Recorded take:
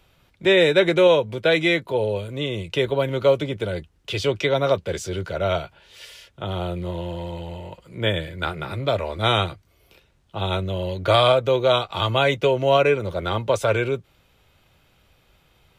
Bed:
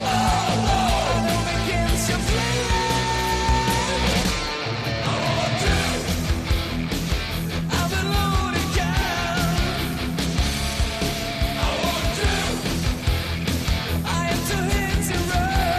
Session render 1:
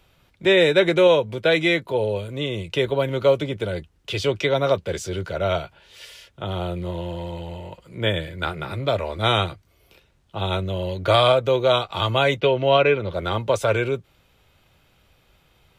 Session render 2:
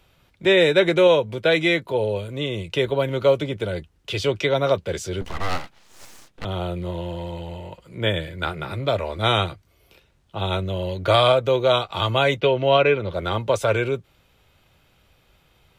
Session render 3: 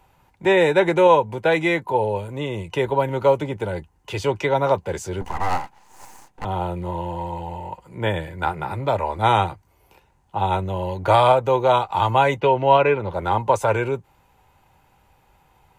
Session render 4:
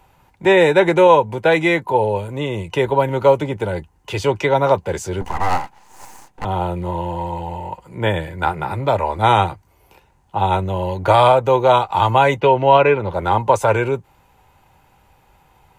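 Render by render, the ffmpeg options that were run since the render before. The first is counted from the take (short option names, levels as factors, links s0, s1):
-filter_complex "[0:a]asettb=1/sr,asplit=3[s0][s1][s2];[s0]atrim=end=12.404[s3];[s1]atrim=start=12.4:end=13.14,asetpts=PTS-STARTPTS,afade=t=in:d=0.004:c=qsin,afade=t=out:st=0.736:d=0.004:c=qsin,highshelf=f=5300:t=q:w=1.5:g=-13[s4];[s2]atrim=start=13.136[s5];[s3][s4]acrossfade=d=0.004:c1=hsin:c2=qsin[s6];[s6][s5]acrossfade=d=0.004:c1=qsin:c2=hsin"
-filter_complex "[0:a]asettb=1/sr,asplit=3[s0][s1][s2];[s0]atrim=end=5.214[s3];[s1]atrim=start=5.21:end=6.45,asetpts=PTS-STARTPTS,afade=t=in:d=0.004:c=qsin,afade=t=out:st=1.236:d=0.004:c=qsin,aeval=exprs='abs(val(0))':c=same[s4];[s2]atrim=start=6.446[s5];[s3][s4]acrossfade=d=0.004:c1=hsin:c2=qsin[s6];[s6][s5]acrossfade=d=0.004:c1=qsin:c2=hsin"
-af "superequalizer=9b=3.55:12b=0.708:13b=0.398:14b=0.562"
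-af "volume=1.58,alimiter=limit=0.794:level=0:latency=1"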